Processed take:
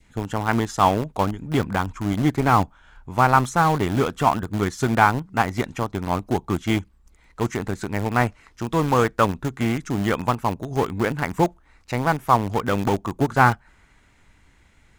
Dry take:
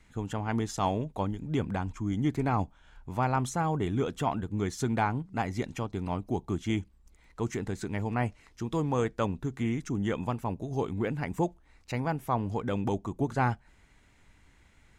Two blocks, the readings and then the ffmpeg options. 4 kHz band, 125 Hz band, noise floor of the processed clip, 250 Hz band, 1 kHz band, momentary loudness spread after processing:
+10.5 dB, +7.0 dB, −57 dBFS, +7.0 dB, +12.0 dB, 8 LU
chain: -filter_complex "[0:a]adynamicequalizer=threshold=0.00501:dfrequency=1300:dqfactor=1.3:tfrequency=1300:tqfactor=1.3:attack=5:release=100:ratio=0.375:range=4:mode=boostabove:tftype=bell,asplit=2[link_01][link_02];[link_02]aeval=exprs='val(0)*gte(abs(val(0)),0.0501)':channel_layout=same,volume=-4dB[link_03];[link_01][link_03]amix=inputs=2:normalize=0,volume=4dB"

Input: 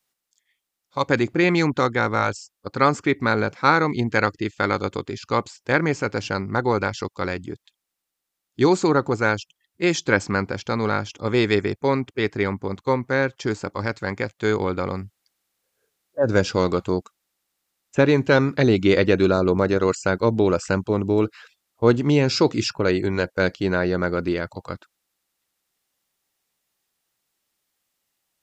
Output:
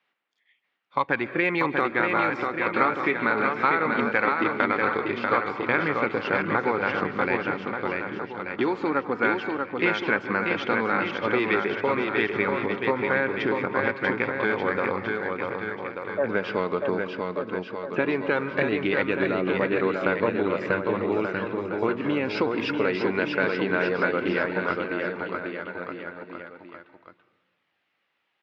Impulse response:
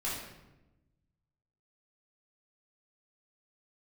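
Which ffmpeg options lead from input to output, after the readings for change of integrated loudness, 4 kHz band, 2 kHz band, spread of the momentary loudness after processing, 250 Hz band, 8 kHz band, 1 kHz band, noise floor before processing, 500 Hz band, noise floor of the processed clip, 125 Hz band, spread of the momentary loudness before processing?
−3.5 dB, −6.0 dB, +1.0 dB, 8 LU, −5.0 dB, below −20 dB, −0.5 dB, −82 dBFS, −3.5 dB, −75 dBFS, −11.0 dB, 10 LU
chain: -filter_complex "[0:a]lowpass=frequency=2700:width=0.5412,lowpass=frequency=2700:width=1.3066,asplit=2[link_01][link_02];[1:a]atrim=start_sample=2205,adelay=126[link_03];[link_02][link_03]afir=irnorm=-1:irlink=0,volume=-21.5dB[link_04];[link_01][link_04]amix=inputs=2:normalize=0,aphaser=in_gain=1:out_gain=1:delay=4.7:decay=0.29:speed=0.15:type=sinusoidal,acompressor=threshold=-24dB:ratio=6,highpass=200,tiltshelf=frequency=1300:gain=-4.5,asplit=2[link_05][link_06];[link_06]aecho=0:1:640|1184|1646|2039|2374:0.631|0.398|0.251|0.158|0.1[link_07];[link_05][link_07]amix=inputs=2:normalize=0,volume=5.5dB"

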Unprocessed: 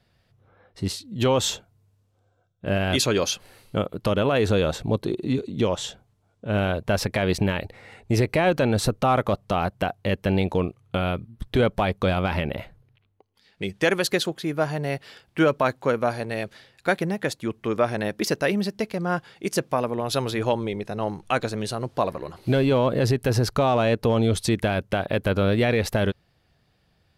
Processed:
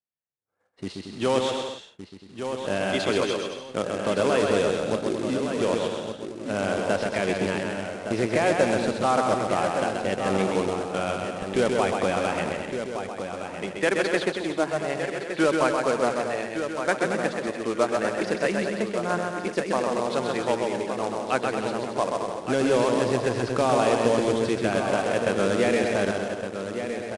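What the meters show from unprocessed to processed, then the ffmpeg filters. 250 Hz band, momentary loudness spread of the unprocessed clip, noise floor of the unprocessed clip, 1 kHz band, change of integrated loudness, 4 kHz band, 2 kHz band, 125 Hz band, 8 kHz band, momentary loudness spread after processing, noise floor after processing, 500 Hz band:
−1.5 dB, 9 LU, −67 dBFS, +1.0 dB, −1.0 dB, −3.0 dB, +0.5 dB, −9.0 dB, −2.5 dB, 9 LU, −43 dBFS, +1.0 dB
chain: -filter_complex "[0:a]acrossover=split=200 3400:gain=0.178 1 0.126[link_01][link_02][link_03];[link_01][link_02][link_03]amix=inputs=3:normalize=0,asplit=2[link_04][link_05];[link_05]adelay=1164,lowpass=frequency=3500:poles=1,volume=-8dB,asplit=2[link_06][link_07];[link_07]adelay=1164,lowpass=frequency=3500:poles=1,volume=0.28,asplit=2[link_08][link_09];[link_09]adelay=1164,lowpass=frequency=3500:poles=1,volume=0.28[link_10];[link_06][link_08][link_10]amix=inputs=3:normalize=0[link_11];[link_04][link_11]amix=inputs=2:normalize=0,acrusher=bits=3:mode=log:mix=0:aa=0.000001,agate=range=-33dB:threshold=-47dB:ratio=3:detection=peak,asplit=2[link_12][link_13];[link_13]aecho=0:1:130|227.5|300.6|355.5|396.6:0.631|0.398|0.251|0.158|0.1[link_14];[link_12][link_14]amix=inputs=2:normalize=0,aresample=22050,aresample=44100,volume=-2dB"

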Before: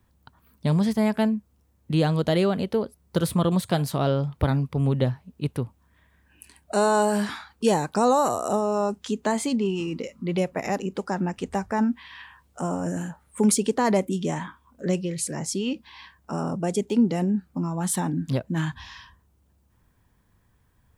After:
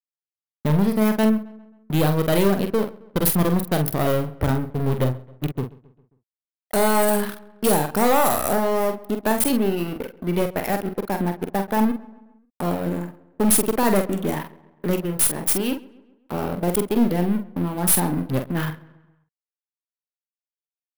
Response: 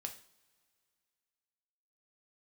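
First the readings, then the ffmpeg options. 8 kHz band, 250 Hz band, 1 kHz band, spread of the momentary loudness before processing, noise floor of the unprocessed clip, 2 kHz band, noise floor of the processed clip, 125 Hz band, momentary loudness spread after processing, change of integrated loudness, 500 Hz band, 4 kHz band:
+6.5 dB, +2.5 dB, +2.5 dB, 10 LU, −64 dBFS, +4.0 dB, below −85 dBFS, +1.5 dB, 11 LU, +3.0 dB, +2.5 dB, +2.5 dB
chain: -filter_complex "[0:a]anlmdn=25.1,lowshelf=frequency=180:gain=-5.5,aeval=exprs='sgn(val(0))*max(abs(val(0))-0.0119,0)':channel_layout=same,aexciter=amount=12:drive=5.9:freq=10000,aeval=exprs='(tanh(15.8*val(0)+0.4)-tanh(0.4))/15.8':channel_layout=same,asplit=2[link_01][link_02];[link_02]adelay=46,volume=-7dB[link_03];[link_01][link_03]amix=inputs=2:normalize=0,asplit=2[link_04][link_05];[link_05]adelay=134,lowpass=frequency=2900:poles=1,volume=-21dB,asplit=2[link_06][link_07];[link_07]adelay=134,lowpass=frequency=2900:poles=1,volume=0.52,asplit=2[link_08][link_09];[link_09]adelay=134,lowpass=frequency=2900:poles=1,volume=0.52,asplit=2[link_10][link_11];[link_11]adelay=134,lowpass=frequency=2900:poles=1,volume=0.52[link_12];[link_04][link_06][link_08][link_10][link_12]amix=inputs=5:normalize=0,volume=9dB"

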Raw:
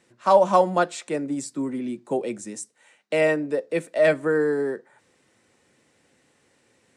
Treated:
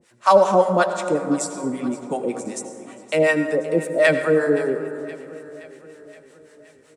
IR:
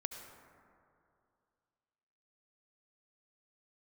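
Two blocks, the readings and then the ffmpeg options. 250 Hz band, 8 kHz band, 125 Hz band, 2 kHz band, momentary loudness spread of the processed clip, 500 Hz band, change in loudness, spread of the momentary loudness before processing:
+4.0 dB, +5.0 dB, +4.5 dB, +5.0 dB, 19 LU, +3.0 dB, +3.0 dB, 14 LU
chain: -filter_complex "[0:a]acrossover=split=650[link_01][link_02];[link_01]aeval=exprs='val(0)*(1-1/2+1/2*cos(2*PI*5.3*n/s))':channel_layout=same[link_03];[link_02]aeval=exprs='val(0)*(1-1/2-1/2*cos(2*PI*5.3*n/s))':channel_layout=same[link_04];[link_03][link_04]amix=inputs=2:normalize=0,aecho=1:1:521|1042|1563|2084|2605:0.119|0.0701|0.0414|0.0244|0.0144,asplit=2[link_05][link_06];[1:a]atrim=start_sample=2205,asetrate=40572,aresample=44100,highshelf=frequency=6000:gain=6.5[link_07];[link_06][link_07]afir=irnorm=-1:irlink=0,volume=5dB[link_08];[link_05][link_08]amix=inputs=2:normalize=0"

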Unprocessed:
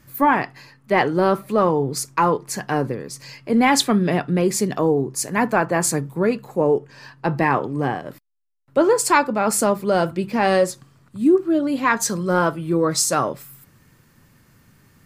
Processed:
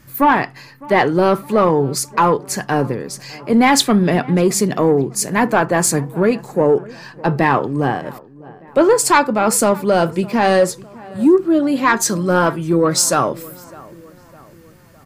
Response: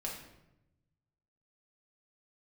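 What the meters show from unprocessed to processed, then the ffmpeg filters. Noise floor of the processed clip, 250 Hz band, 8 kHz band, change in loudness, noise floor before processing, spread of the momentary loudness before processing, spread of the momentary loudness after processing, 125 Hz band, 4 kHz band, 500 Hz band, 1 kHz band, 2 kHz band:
−44 dBFS, +4.5 dB, +4.5 dB, +4.0 dB, −56 dBFS, 8 LU, 9 LU, +4.5 dB, +4.5 dB, +4.0 dB, +4.0 dB, +3.5 dB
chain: -filter_complex "[0:a]acontrast=55,asplit=2[link_01][link_02];[link_02]adelay=607,lowpass=frequency=2100:poles=1,volume=-21dB,asplit=2[link_03][link_04];[link_04]adelay=607,lowpass=frequency=2100:poles=1,volume=0.52,asplit=2[link_05][link_06];[link_06]adelay=607,lowpass=frequency=2100:poles=1,volume=0.52,asplit=2[link_07][link_08];[link_08]adelay=607,lowpass=frequency=2100:poles=1,volume=0.52[link_09];[link_01][link_03][link_05][link_07][link_09]amix=inputs=5:normalize=0,volume=-1dB"

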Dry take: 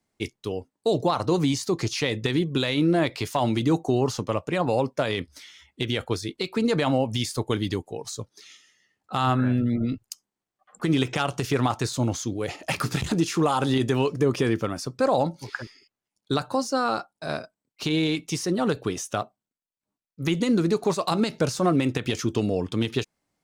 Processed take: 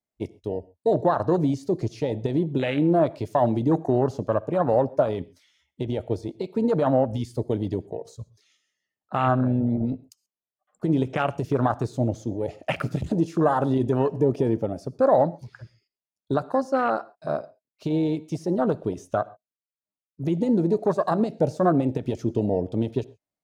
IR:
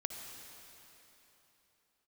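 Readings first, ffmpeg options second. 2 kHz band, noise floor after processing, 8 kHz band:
−5.5 dB, below −85 dBFS, below −15 dB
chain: -filter_complex "[0:a]afwtdn=0.0447,equalizer=frequency=620:width_type=o:width=0.37:gain=7.5,asplit=2[link_01][link_02];[1:a]atrim=start_sample=2205,atrim=end_sample=6174[link_03];[link_02][link_03]afir=irnorm=-1:irlink=0,volume=-9dB[link_04];[link_01][link_04]amix=inputs=2:normalize=0,volume=-2dB"

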